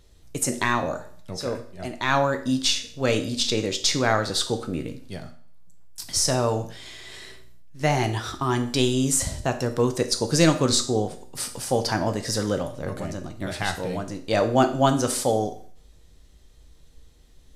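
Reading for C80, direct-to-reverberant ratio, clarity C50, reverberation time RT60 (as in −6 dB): 15.5 dB, 6.0 dB, 12.0 dB, 0.50 s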